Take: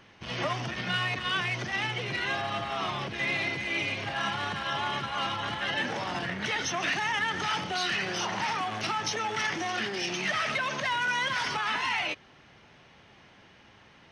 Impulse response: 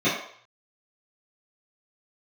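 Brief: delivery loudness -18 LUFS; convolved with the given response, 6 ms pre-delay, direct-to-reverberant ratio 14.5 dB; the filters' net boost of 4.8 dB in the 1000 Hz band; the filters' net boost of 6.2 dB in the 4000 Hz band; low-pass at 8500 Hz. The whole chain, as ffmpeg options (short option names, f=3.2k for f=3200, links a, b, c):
-filter_complex "[0:a]lowpass=8.5k,equalizer=f=1k:t=o:g=5.5,equalizer=f=4k:t=o:g=8.5,asplit=2[a][b];[1:a]atrim=start_sample=2205,adelay=6[c];[b][c]afir=irnorm=-1:irlink=0,volume=-31dB[d];[a][d]amix=inputs=2:normalize=0,volume=7.5dB"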